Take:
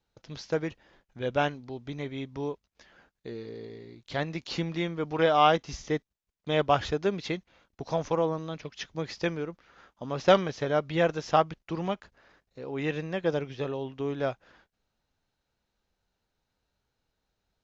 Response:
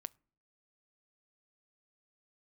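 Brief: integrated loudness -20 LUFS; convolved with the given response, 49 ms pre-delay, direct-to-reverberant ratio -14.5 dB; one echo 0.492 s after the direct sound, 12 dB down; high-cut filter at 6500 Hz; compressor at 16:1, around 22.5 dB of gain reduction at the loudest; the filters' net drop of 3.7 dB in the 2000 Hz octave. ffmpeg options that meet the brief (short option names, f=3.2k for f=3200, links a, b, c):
-filter_complex "[0:a]lowpass=6.5k,equalizer=f=2k:t=o:g=-5,acompressor=threshold=-38dB:ratio=16,aecho=1:1:492:0.251,asplit=2[a][b];[1:a]atrim=start_sample=2205,adelay=49[c];[b][c]afir=irnorm=-1:irlink=0,volume=18.5dB[d];[a][d]amix=inputs=2:normalize=0,volume=9.5dB"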